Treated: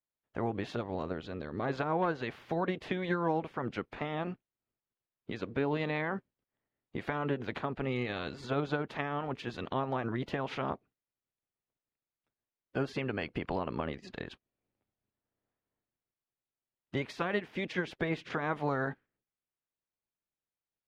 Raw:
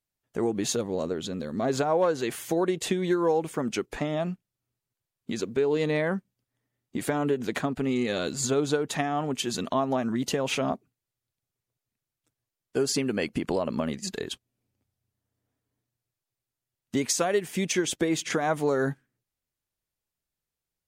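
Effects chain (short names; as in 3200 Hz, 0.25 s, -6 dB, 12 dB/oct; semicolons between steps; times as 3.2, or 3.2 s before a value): spectral limiter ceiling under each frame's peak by 15 dB; air absorption 340 m; gain -5.5 dB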